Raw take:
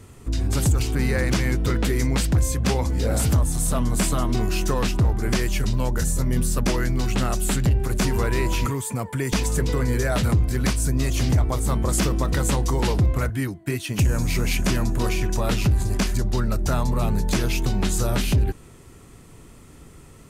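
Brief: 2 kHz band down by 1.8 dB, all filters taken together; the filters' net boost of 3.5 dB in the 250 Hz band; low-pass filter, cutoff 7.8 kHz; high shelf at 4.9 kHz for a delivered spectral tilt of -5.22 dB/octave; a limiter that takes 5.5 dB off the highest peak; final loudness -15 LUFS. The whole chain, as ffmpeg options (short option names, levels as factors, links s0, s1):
-af "lowpass=7800,equalizer=f=250:t=o:g=4.5,equalizer=f=2000:t=o:g=-3.5,highshelf=f=4900:g=7,volume=2.82,alimiter=limit=0.501:level=0:latency=1"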